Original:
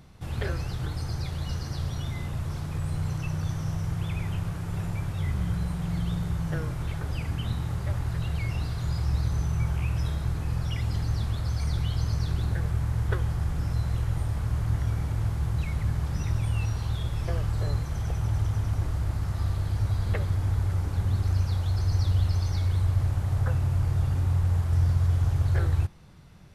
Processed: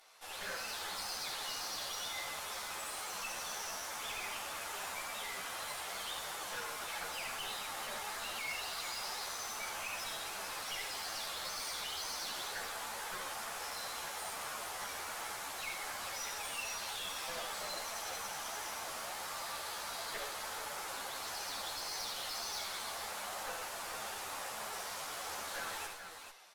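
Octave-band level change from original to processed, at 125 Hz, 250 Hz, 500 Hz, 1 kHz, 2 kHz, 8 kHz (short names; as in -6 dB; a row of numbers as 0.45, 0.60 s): -40.0, -22.5, -5.5, +1.0, +2.0, +7.5 dB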